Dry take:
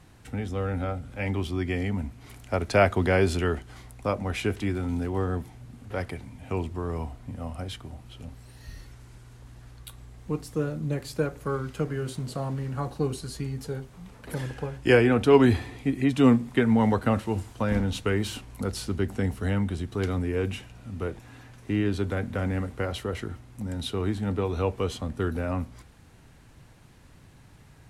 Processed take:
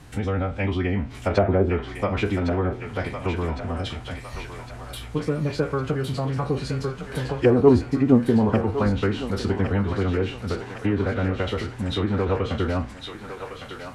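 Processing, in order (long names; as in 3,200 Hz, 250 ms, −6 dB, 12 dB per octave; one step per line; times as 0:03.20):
peak hold with a decay on every bin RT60 0.53 s
in parallel at +2 dB: downward compressor 10 to 1, threshold −32 dBFS, peak gain reduction 20.5 dB
on the sum: phase-vocoder stretch with locked phases 0.5×
harmonic generator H 3 −19 dB, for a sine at −5.5 dBFS
treble cut that deepens with the level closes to 710 Hz, closed at −18.5 dBFS
feedback echo with a high-pass in the loop 1,108 ms, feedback 67%, high-pass 810 Hz, level −5.5 dB
level +4 dB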